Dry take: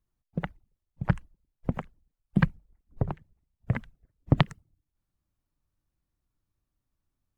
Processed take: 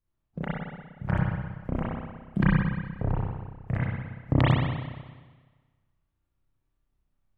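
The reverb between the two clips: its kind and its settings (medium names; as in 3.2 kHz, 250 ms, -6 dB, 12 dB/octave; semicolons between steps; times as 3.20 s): spring tank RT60 1.4 s, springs 31/59 ms, chirp 55 ms, DRR -9 dB; trim -6 dB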